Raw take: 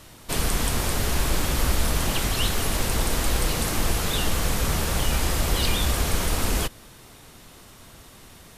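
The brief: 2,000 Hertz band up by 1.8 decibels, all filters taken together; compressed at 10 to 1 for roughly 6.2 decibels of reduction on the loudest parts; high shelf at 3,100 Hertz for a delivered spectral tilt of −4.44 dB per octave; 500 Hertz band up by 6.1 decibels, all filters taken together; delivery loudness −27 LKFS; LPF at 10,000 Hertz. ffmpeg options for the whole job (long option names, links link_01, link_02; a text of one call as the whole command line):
ffmpeg -i in.wav -af "lowpass=10000,equalizer=frequency=500:width_type=o:gain=7.5,equalizer=frequency=2000:width_type=o:gain=4,highshelf=frequency=3100:gain=-6,acompressor=threshold=-23dB:ratio=10,volume=2.5dB" out.wav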